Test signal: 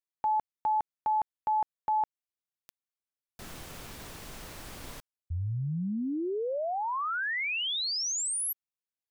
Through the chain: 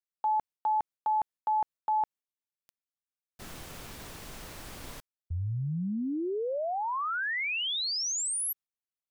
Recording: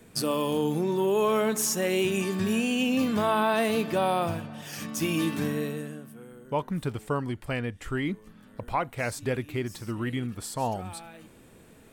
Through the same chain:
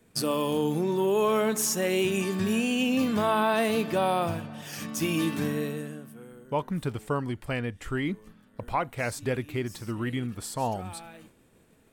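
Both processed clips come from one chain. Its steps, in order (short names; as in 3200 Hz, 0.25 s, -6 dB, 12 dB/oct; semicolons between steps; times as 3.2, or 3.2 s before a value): expander -46 dBFS, range -9 dB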